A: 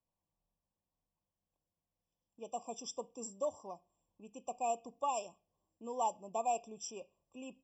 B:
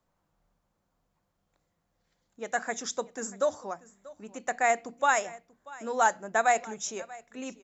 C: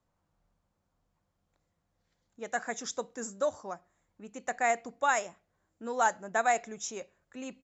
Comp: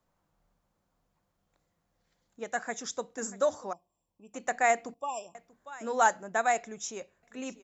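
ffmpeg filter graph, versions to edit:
-filter_complex "[2:a]asplit=2[a][b];[0:a]asplit=2[c][d];[1:a]asplit=5[e][f][g][h][i];[e]atrim=end=2.442[j];[a]atrim=start=2.438:end=3.182[k];[f]atrim=start=3.178:end=3.732[l];[c]atrim=start=3.728:end=4.342[m];[g]atrim=start=4.338:end=4.942[n];[d]atrim=start=4.938:end=5.352[o];[h]atrim=start=5.348:end=6.232[p];[b]atrim=start=6.228:end=7.232[q];[i]atrim=start=7.228[r];[j][k]acrossfade=d=0.004:c1=hsin:c2=hsin[s];[s][l]acrossfade=d=0.004:c1=hsin:c2=hsin[t];[t][m]acrossfade=d=0.004:c1=hsin:c2=hsin[u];[u][n]acrossfade=d=0.004:c1=hsin:c2=hsin[v];[v][o]acrossfade=d=0.004:c1=hsin:c2=hsin[w];[w][p]acrossfade=d=0.004:c1=hsin:c2=hsin[x];[x][q]acrossfade=d=0.004:c1=hsin:c2=hsin[y];[y][r]acrossfade=d=0.004:c1=hsin:c2=hsin"

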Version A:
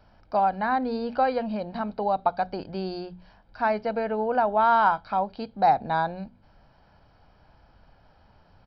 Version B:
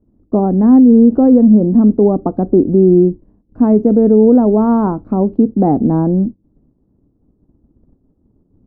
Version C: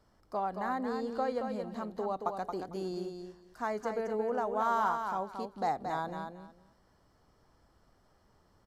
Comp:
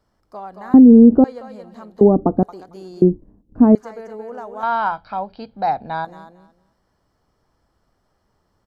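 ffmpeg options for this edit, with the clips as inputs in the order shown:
-filter_complex "[1:a]asplit=3[a][b][c];[2:a]asplit=5[d][e][f][g][h];[d]atrim=end=0.742[i];[a]atrim=start=0.738:end=1.242[j];[e]atrim=start=1.238:end=2.012[k];[b]atrim=start=2.008:end=2.432[l];[f]atrim=start=2.428:end=3.022[m];[c]atrim=start=3.018:end=3.752[n];[g]atrim=start=3.748:end=4.632[o];[0:a]atrim=start=4.628:end=6.052[p];[h]atrim=start=6.048[q];[i][j]acrossfade=d=0.004:c1=hsin:c2=hsin[r];[r][k]acrossfade=d=0.004:c1=hsin:c2=hsin[s];[s][l]acrossfade=d=0.004:c1=hsin:c2=hsin[t];[t][m]acrossfade=d=0.004:c1=hsin:c2=hsin[u];[u][n]acrossfade=d=0.004:c1=hsin:c2=hsin[v];[v][o]acrossfade=d=0.004:c1=hsin:c2=hsin[w];[w][p]acrossfade=d=0.004:c1=hsin:c2=hsin[x];[x][q]acrossfade=d=0.004:c1=hsin:c2=hsin"

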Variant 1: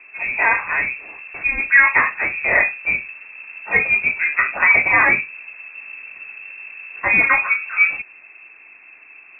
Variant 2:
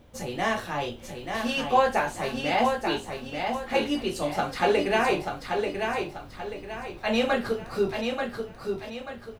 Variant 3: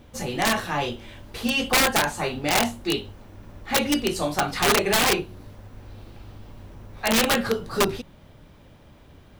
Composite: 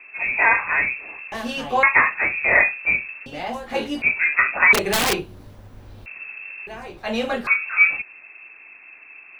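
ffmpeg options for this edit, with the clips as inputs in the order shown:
-filter_complex "[1:a]asplit=3[a][b][c];[0:a]asplit=5[d][e][f][g][h];[d]atrim=end=1.322[i];[a]atrim=start=1.318:end=1.832[j];[e]atrim=start=1.828:end=3.262[k];[b]atrim=start=3.258:end=4.022[l];[f]atrim=start=4.018:end=4.732[m];[2:a]atrim=start=4.728:end=6.062[n];[g]atrim=start=6.058:end=6.672[o];[c]atrim=start=6.668:end=7.472[p];[h]atrim=start=7.468[q];[i][j]acrossfade=d=0.004:c1=hsin:c2=hsin[r];[r][k]acrossfade=d=0.004:c1=hsin:c2=hsin[s];[s][l]acrossfade=d=0.004:c1=hsin:c2=hsin[t];[t][m]acrossfade=d=0.004:c1=hsin:c2=hsin[u];[u][n]acrossfade=d=0.004:c1=hsin:c2=hsin[v];[v][o]acrossfade=d=0.004:c1=hsin:c2=hsin[w];[w][p]acrossfade=d=0.004:c1=hsin:c2=hsin[x];[x][q]acrossfade=d=0.004:c1=hsin:c2=hsin"

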